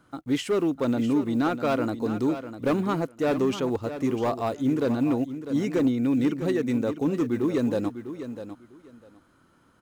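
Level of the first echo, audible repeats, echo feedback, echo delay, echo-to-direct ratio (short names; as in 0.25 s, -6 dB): -11.0 dB, 2, 18%, 0.65 s, -11.0 dB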